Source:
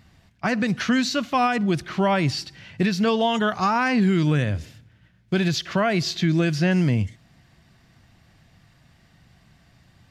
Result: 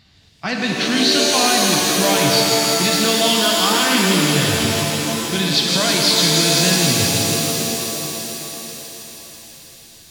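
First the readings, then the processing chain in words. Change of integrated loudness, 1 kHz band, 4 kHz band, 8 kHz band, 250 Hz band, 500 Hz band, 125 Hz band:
+7.0 dB, +4.0 dB, +16.0 dB, +22.0 dB, +2.5 dB, +6.0 dB, +0.5 dB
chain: parametric band 4,000 Hz +14.5 dB 1.1 octaves
on a send: delay with a high-pass on its return 163 ms, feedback 83%, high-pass 2,200 Hz, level −4 dB
on the sum: reverb with rising layers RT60 3.1 s, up +7 semitones, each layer −2 dB, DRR 0.5 dB
level −2.5 dB

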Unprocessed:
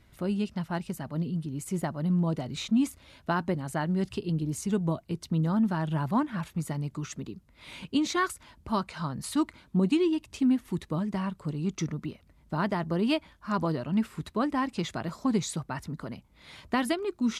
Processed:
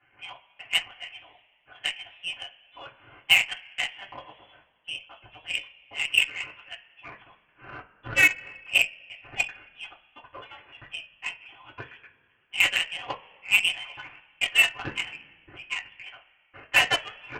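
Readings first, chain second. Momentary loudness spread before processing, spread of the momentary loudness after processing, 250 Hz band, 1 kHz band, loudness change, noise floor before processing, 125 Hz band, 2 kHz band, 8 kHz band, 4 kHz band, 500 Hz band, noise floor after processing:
11 LU, 24 LU, −24.0 dB, −5.0 dB, +5.0 dB, −61 dBFS, −18.5 dB, +14.5 dB, +3.0 dB, +13.5 dB, −10.5 dB, −65 dBFS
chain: high-pass filter 800 Hz 24 dB per octave
gate pattern "xxx..xxxx" 127 BPM −60 dB
voice inversion scrambler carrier 3,700 Hz
coupled-rooms reverb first 0.23 s, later 2 s, from −22 dB, DRR −8 dB
harmonic generator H 7 −21 dB, 8 −41 dB, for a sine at −11 dBFS
level +4.5 dB

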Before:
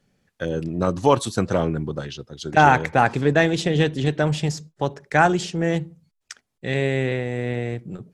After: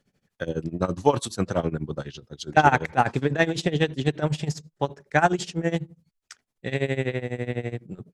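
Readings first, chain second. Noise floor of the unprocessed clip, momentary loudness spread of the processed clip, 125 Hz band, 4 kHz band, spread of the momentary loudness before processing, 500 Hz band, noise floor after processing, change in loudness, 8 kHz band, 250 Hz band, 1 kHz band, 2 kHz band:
−75 dBFS, 13 LU, −4.0 dB, −3.5 dB, 12 LU, −4.0 dB, −80 dBFS, −3.5 dB, −3.0 dB, −4.0 dB, −3.5 dB, −4.0 dB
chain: amplitude tremolo 12 Hz, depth 88%

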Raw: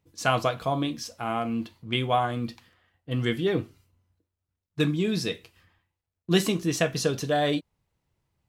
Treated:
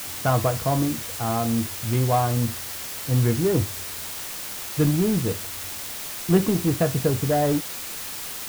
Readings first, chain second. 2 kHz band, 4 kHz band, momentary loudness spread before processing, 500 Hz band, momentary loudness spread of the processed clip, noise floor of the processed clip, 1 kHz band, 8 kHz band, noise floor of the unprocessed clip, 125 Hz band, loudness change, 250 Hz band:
−1.5 dB, −0.5 dB, 9 LU, +3.0 dB, 10 LU, −34 dBFS, +2.0 dB, +9.0 dB, below −85 dBFS, +8.5 dB, +3.0 dB, +4.5 dB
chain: low-pass filter 1,100 Hz 12 dB per octave
parametric band 92 Hz +13.5 dB 0.83 octaves
in parallel at −12 dB: wave folding −25.5 dBFS
on the sum: bit-depth reduction 6 bits, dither triangular
level +2.5 dB

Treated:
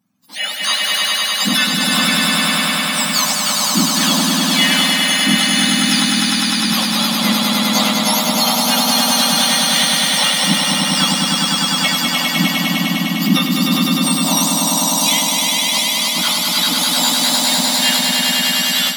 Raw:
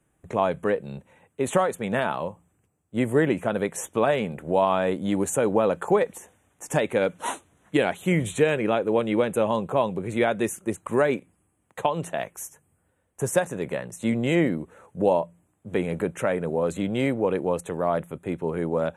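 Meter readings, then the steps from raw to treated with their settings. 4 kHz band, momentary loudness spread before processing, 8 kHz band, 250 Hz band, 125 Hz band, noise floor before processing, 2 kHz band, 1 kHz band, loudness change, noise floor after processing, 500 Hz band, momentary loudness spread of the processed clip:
+30.0 dB, 10 LU, +22.5 dB, +9.5 dB, +6.5 dB, −71 dBFS, +14.5 dB, +8.5 dB, +12.0 dB, −20 dBFS, −5.0 dB, 3 LU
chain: frequency axis turned over on the octave scale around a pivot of 1,400 Hz
echo that builds up and dies away 101 ms, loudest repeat 5, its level −3 dB
automatic gain control gain up to 10 dB

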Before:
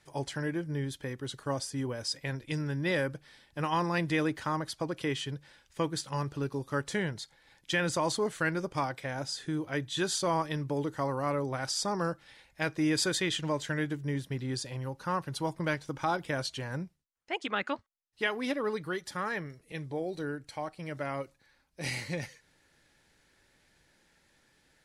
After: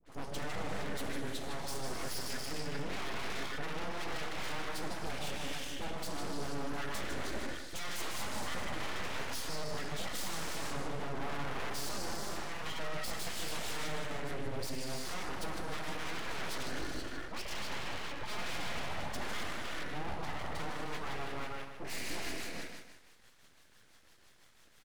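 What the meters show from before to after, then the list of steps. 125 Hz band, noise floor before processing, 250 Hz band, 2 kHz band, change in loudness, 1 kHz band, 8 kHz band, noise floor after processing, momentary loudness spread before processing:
−10.0 dB, −68 dBFS, −10.0 dB, −5.0 dB, −6.5 dB, −5.5 dB, −3.5 dB, −61 dBFS, 9 LU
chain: reverb whose tail is shaped and stops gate 500 ms flat, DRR 2 dB
rotating-speaker cabinet horn 0.85 Hz, later 6 Hz, at 0:19.03
hollow resonant body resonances 1,600/2,700 Hz, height 10 dB
downward compressor 2 to 1, threshold −32 dBFS, peak gain reduction 6 dB
brickwall limiter −27.5 dBFS, peak gain reduction 10.5 dB
all-pass dispersion highs, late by 64 ms, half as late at 810 Hz
soft clipping −35 dBFS, distortion −13 dB
repeating echo 153 ms, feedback 36%, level −8 dB
full-wave rectification
level +4.5 dB

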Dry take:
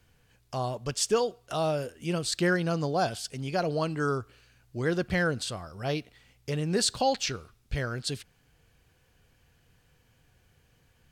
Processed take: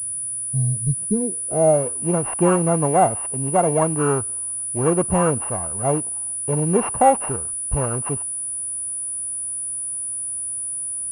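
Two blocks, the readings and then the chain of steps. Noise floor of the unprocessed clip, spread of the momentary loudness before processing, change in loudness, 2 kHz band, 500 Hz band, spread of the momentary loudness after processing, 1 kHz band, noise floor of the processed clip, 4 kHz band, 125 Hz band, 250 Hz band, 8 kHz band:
−66 dBFS, 9 LU, +9.0 dB, −2.0 dB, +9.5 dB, 7 LU, +11.5 dB, −28 dBFS, below −15 dB, +9.5 dB, +9.0 dB, +17.0 dB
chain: samples sorted by size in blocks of 16 samples
low-pass filter sweep 140 Hz → 940 Hz, 0:00.94–0:01.86
switching amplifier with a slow clock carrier 9,800 Hz
level +8 dB

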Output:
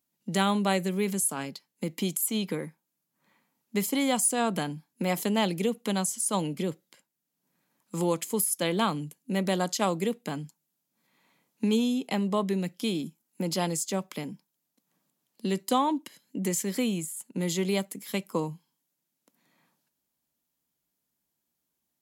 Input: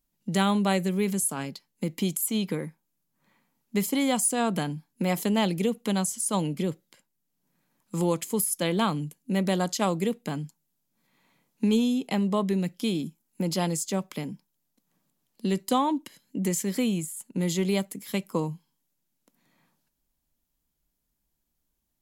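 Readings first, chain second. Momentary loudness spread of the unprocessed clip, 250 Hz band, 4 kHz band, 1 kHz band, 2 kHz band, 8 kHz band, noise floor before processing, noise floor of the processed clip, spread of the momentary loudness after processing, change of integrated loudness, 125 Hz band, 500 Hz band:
10 LU, −2.5 dB, 0.0 dB, 0.0 dB, 0.0 dB, 0.0 dB, −78 dBFS, −82 dBFS, 11 LU, −1.5 dB, −3.5 dB, −1.0 dB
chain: high-pass filter 110 Hz
low-shelf EQ 180 Hz −5.5 dB

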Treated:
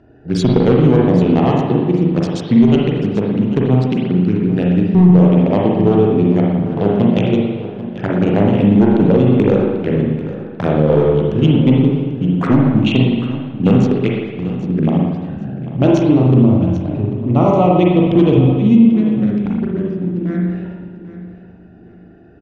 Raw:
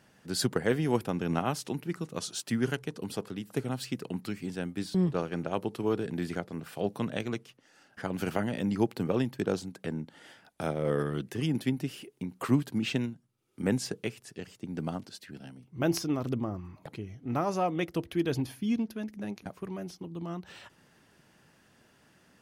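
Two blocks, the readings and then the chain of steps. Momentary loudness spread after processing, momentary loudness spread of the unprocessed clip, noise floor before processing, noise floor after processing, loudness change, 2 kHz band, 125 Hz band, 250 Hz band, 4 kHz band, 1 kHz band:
10 LU, 12 LU, −64 dBFS, −39 dBFS, +18.5 dB, +9.5 dB, +21.0 dB, +20.0 dB, +9.5 dB, +14.5 dB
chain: adaptive Wiener filter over 41 samples
in parallel at +3 dB: downward compressor 6 to 1, threshold −42 dBFS, peak gain reduction 21 dB
on the sum: flanger swept by the level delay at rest 3 ms, full sweep at −27 dBFS
gain into a clipping stage and back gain 20 dB
high-frequency loss of the air 150 metres
on a send: repeating echo 791 ms, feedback 27%, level −14.5 dB
on the sum: spring reverb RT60 1.3 s, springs 39/56 ms, chirp 65 ms, DRR −2.5 dB
boost into a limiter +15 dB
level −1 dB

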